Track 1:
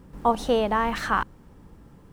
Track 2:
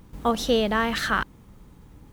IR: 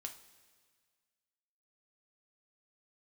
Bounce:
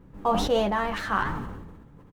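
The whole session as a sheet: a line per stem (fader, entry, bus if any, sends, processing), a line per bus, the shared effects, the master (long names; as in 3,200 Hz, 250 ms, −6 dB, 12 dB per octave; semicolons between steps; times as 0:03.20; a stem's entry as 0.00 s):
−1.0 dB, 0.00 s, send −7.5 dB, adaptive Wiener filter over 9 samples
−5.0 dB, 10 ms, no send, high-shelf EQ 3,900 Hz −8.5 dB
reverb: on, pre-delay 3 ms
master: flanger 1.5 Hz, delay 5.8 ms, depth 6.4 ms, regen +74%; level that may fall only so fast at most 38 dB per second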